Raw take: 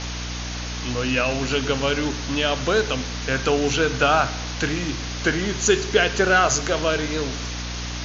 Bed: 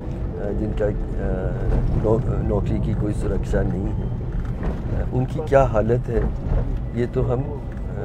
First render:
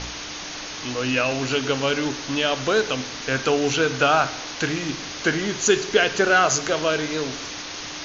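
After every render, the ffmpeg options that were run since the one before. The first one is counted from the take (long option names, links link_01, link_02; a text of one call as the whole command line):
ffmpeg -i in.wav -af "bandreject=frequency=60:width_type=h:width=4,bandreject=frequency=120:width_type=h:width=4,bandreject=frequency=180:width_type=h:width=4,bandreject=frequency=240:width_type=h:width=4" out.wav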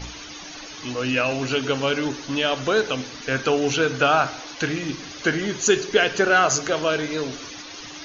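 ffmpeg -i in.wav -af "afftdn=noise_reduction=11:noise_floor=-34" out.wav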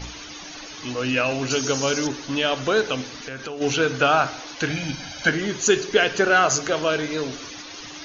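ffmpeg -i in.wav -filter_complex "[0:a]asettb=1/sr,asplit=3[link_01][link_02][link_03];[link_01]atrim=end=1.504[link_04];[link_02]atrim=start=1.5:end=2.07,asetpts=PTS-STARTPTS,afade=type=in:duration=0.004:curve=qsin,afade=type=out:start_time=0.566:duration=0.004:curve=qsin,highshelf=frequency=4300:width_type=q:width=1.5:gain=11[link_05];[link_03]atrim=start=2.066[link_06];[link_04][link_05]acrossfade=duration=0.004:curve1=hsin:curve2=qsin[link_07];[link_07][link_06]acrossfade=duration=0.004:curve1=qsin:curve2=hsin,asplit=3[link_08][link_09][link_10];[link_08]afade=type=out:start_time=3.19:duration=0.02[link_11];[link_09]acompressor=threshold=-31dB:ratio=4:attack=3.2:release=140:knee=1:detection=peak,afade=type=in:start_time=3.19:duration=0.02,afade=type=out:start_time=3.6:duration=0.02[link_12];[link_10]afade=type=in:start_time=3.6:duration=0.02[link_13];[link_11][link_12][link_13]amix=inputs=3:normalize=0,asettb=1/sr,asplit=3[link_14][link_15][link_16];[link_14]atrim=end=4.704[link_17];[link_15]atrim=start=4.7:end=5.29,asetpts=PTS-STARTPTS,afade=type=in:duration=0.004:curve=qsin,afade=type=out:start_time=0.586:duration=0.004:curve=qsin,aecho=1:1:1.3:0.85,atrim=end_sample=26019[link_18];[link_16]atrim=start=5.286[link_19];[link_17][link_18]acrossfade=duration=0.004:curve1=hsin:curve2=qsin[link_20];[link_20][link_19]acrossfade=duration=0.004:curve1=qsin:curve2=hsin" out.wav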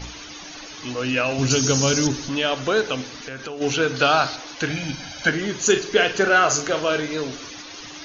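ffmpeg -i in.wav -filter_complex "[0:a]asettb=1/sr,asplit=3[link_01][link_02][link_03];[link_01]atrim=end=1.384[link_04];[link_02]atrim=start=1.38:end=2.29,asetpts=PTS-STARTPTS,afade=type=in:duration=0.004:curve=qsin,afade=type=out:start_time=0.906:duration=0.004:curve=qsin,bass=frequency=250:gain=11,treble=frequency=4000:gain=7[link_05];[link_03]atrim=start=2.286[link_06];[link_04][link_05]acrossfade=duration=0.004:curve1=hsin:curve2=qsin[link_07];[link_07][link_06]acrossfade=duration=0.004:curve1=qsin:curve2=hsin,asettb=1/sr,asplit=3[link_08][link_09][link_10];[link_08]atrim=end=3.964[link_11];[link_09]atrim=start=3.96:end=4.36,asetpts=PTS-STARTPTS,afade=type=in:duration=0.004:curve=qsin,afade=type=out:start_time=0.396:duration=0.004:curve=qsin,equalizer=frequency=4300:width=2.4:gain=12[link_12];[link_10]atrim=start=4.356[link_13];[link_11][link_12]acrossfade=duration=0.004:curve1=hsin:curve2=qsin[link_14];[link_14][link_13]acrossfade=duration=0.004:curve1=qsin:curve2=hsin,asettb=1/sr,asplit=3[link_15][link_16][link_17];[link_15]atrim=end=5.544[link_18];[link_16]atrim=start=5.54:end=7,asetpts=PTS-STARTPTS,afade=type=in:duration=0.004:curve=qsin,afade=type=out:start_time=1.456:duration=0.004:curve=qsin,asplit=2[link_19][link_20];[link_20]adelay=41,volume=-9dB[link_21];[link_19][link_21]amix=inputs=2:normalize=0,atrim=end_sample=64386[link_22];[link_17]atrim=start=6.996[link_23];[link_18][link_22]acrossfade=duration=0.004:curve1=hsin:curve2=qsin[link_24];[link_24][link_23]acrossfade=duration=0.004:curve1=qsin:curve2=hsin" out.wav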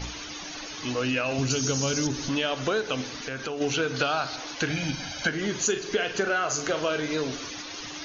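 ffmpeg -i in.wav -af "acompressor=threshold=-23dB:ratio=6" out.wav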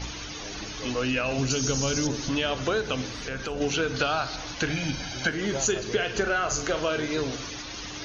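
ffmpeg -i in.wav -i bed.wav -filter_complex "[1:a]volume=-19dB[link_01];[0:a][link_01]amix=inputs=2:normalize=0" out.wav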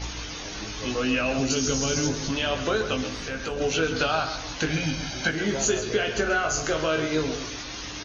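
ffmpeg -i in.wav -filter_complex "[0:a]asplit=2[link_01][link_02];[link_02]adelay=19,volume=-5dB[link_03];[link_01][link_03]amix=inputs=2:normalize=0,asplit=2[link_04][link_05];[link_05]adelay=134.1,volume=-10dB,highshelf=frequency=4000:gain=-3.02[link_06];[link_04][link_06]amix=inputs=2:normalize=0" out.wav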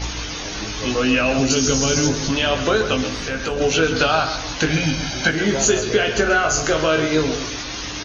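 ffmpeg -i in.wav -af "volume=7dB" out.wav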